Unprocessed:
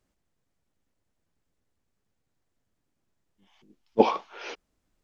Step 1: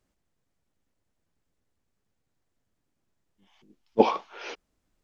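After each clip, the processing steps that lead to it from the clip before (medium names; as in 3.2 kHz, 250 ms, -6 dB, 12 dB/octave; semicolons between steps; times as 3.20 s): no audible change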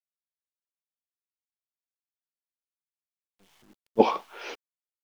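bit crusher 10-bit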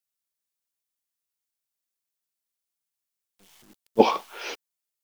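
treble shelf 4.1 kHz +9.5 dB; trim +2 dB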